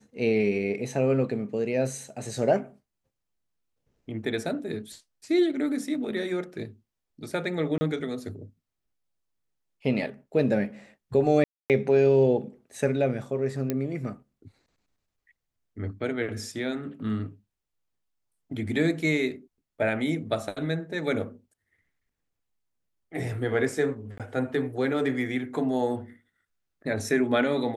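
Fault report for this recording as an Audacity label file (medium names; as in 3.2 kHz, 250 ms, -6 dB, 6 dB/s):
7.780000	7.810000	dropout 30 ms
11.440000	11.700000	dropout 258 ms
13.700000	13.700000	pop -13 dBFS
24.180000	24.200000	dropout 17 ms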